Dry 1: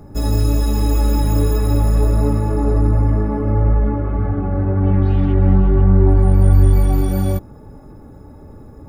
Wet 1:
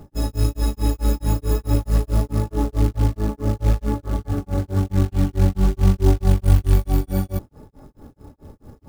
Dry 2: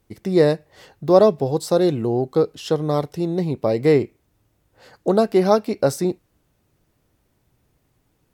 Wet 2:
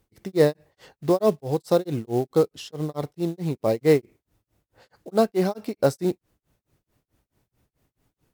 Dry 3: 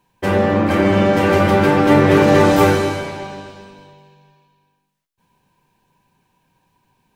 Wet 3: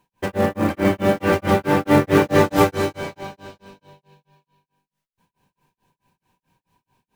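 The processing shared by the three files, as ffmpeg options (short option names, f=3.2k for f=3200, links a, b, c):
-af "tremolo=f=4.6:d=1,acrusher=bits=6:mode=log:mix=0:aa=0.000001,volume=-1dB"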